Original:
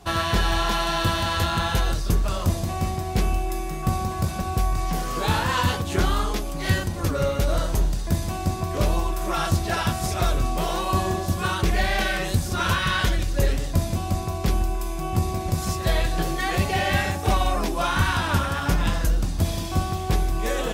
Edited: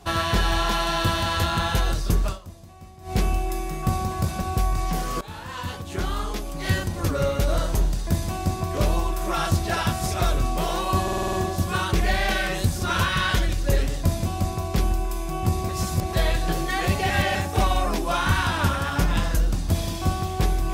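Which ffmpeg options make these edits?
-filter_complex "[0:a]asplit=14[s0][s1][s2][s3][s4][s5][s6][s7][s8][s9][s10][s11][s12][s13];[s0]atrim=end=2.43,asetpts=PTS-STARTPTS,afade=t=out:st=2.28:d=0.15:c=qua:silence=0.112202[s14];[s1]atrim=start=2.43:end=2.98,asetpts=PTS-STARTPTS,volume=0.112[s15];[s2]atrim=start=2.98:end=5.21,asetpts=PTS-STARTPTS,afade=t=in:d=0.15:c=qua:silence=0.112202,afade=t=out:st=2.226:d=0.004:c=hsin:silence=0.112202[s16];[s3]atrim=start=5.21:end=11.082,asetpts=PTS-STARTPTS,afade=t=in:d=1.77:silence=0.112202[s17];[s4]atrim=start=11.028:end=11.082[s18];[s5]atrim=start=11.028:end=11.082[s19];[s6]atrim=start=11.028:end=11.082[s20];[s7]atrim=start=11.028:end=11.082[s21];[s8]atrim=start=11.028:end=11.082[s22];[s9]atrim=start=11.028:end=15.392[s23];[s10]atrim=start=15.388:end=15.832,asetpts=PTS-STARTPTS,areverse[s24];[s11]atrim=start=15.828:end=16.802[s25];[s12]atrim=start=16.798:end=17.052,asetpts=PTS-STARTPTS,areverse[s26];[s13]atrim=start=17.048[s27];[s14][s15][s16][s17]concat=n=4:v=0:a=1[s28];[s28][s18]acrossfade=d=0.004:c1=hsin:c2=hsin[s29];[s29][s19]acrossfade=d=0.004:c1=hsin:c2=hsin[s30];[s30][s20]acrossfade=d=0.004:c1=hsin:c2=hsin[s31];[s31][s21]acrossfade=d=0.004:c1=hsin:c2=hsin[s32];[s32][s22]acrossfade=d=0.004:c1=hsin:c2=hsin[s33];[s33][s23]acrossfade=d=0.004:c1=hsin:c2=hsin[s34];[s34][s24]acrossfade=d=0.004:c1=hsin:c2=hsin[s35];[s35][s25]acrossfade=d=0.004:c1=hsin:c2=hsin[s36];[s36][s26]acrossfade=d=0.004:c1=hsin:c2=hsin[s37];[s37][s27]acrossfade=d=0.004:c1=hsin:c2=hsin"

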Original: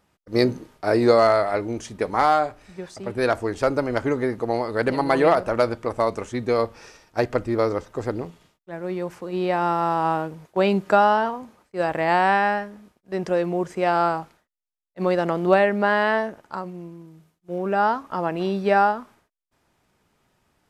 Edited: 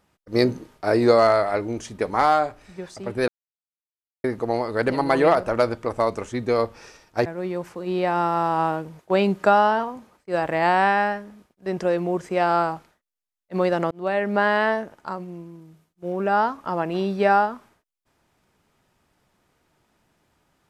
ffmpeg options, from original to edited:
-filter_complex "[0:a]asplit=5[s0][s1][s2][s3][s4];[s0]atrim=end=3.28,asetpts=PTS-STARTPTS,afade=t=out:st=3.276:d=0.004:c=hsin[s5];[s1]atrim=start=3.28:end=4.24,asetpts=PTS-STARTPTS,volume=0[s6];[s2]atrim=start=4.24:end=7.262,asetpts=PTS-STARTPTS,afade=t=in:d=0.004:c=hsin[s7];[s3]atrim=start=8.718:end=15.37,asetpts=PTS-STARTPTS,afade=t=out:st=6.648:d=0.004:c=hsin[s8];[s4]atrim=start=15.37,asetpts=PTS-STARTPTS,afade=t=in:d=0.45[s9];[s5][s6][s7]concat=n=3:v=0:a=1[s10];[s8][s9]concat=n=2:v=0:a=1[s11];[s10][s11]acrossfade=d=0.004:c1=hsin:c2=hsin"

